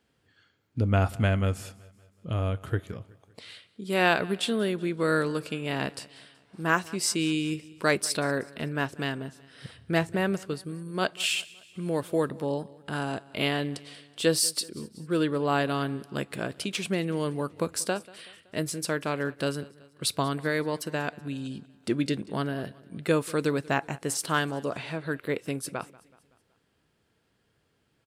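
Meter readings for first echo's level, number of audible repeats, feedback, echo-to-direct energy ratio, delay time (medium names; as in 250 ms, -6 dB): -22.0 dB, 3, 51%, -20.5 dB, 188 ms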